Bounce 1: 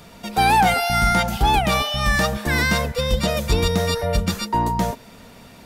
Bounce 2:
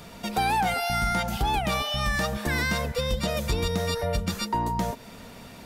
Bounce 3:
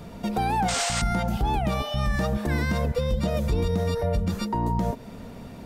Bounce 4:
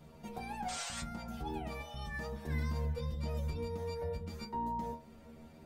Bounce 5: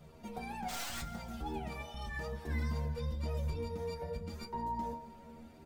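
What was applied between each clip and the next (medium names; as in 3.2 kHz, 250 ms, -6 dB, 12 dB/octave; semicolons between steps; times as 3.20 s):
compression 2.5:1, threshold -26 dBFS, peak gain reduction 9 dB
tilt shelf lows +6.5 dB, about 910 Hz; painted sound noise, 0.68–1.02 s, 480–9000 Hz -25 dBFS; peak limiter -16 dBFS, peak gain reduction 7 dB
inharmonic resonator 76 Hz, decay 0.33 s, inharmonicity 0.002; trim -5.5 dB
tracing distortion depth 0.066 ms; flange 0.87 Hz, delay 1.5 ms, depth 4.2 ms, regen -43%; feedback delay 166 ms, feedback 60%, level -18 dB; trim +4 dB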